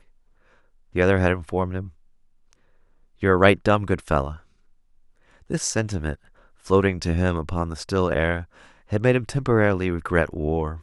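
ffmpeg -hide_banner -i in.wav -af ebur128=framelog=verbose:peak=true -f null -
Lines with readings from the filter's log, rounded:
Integrated loudness:
  I:         -22.8 LUFS
  Threshold: -34.0 LUFS
Loudness range:
  LRA:         3.4 LU
  Threshold: -44.3 LUFS
  LRA low:   -26.6 LUFS
  LRA high:  -23.2 LUFS
True peak:
  Peak:       -1.7 dBFS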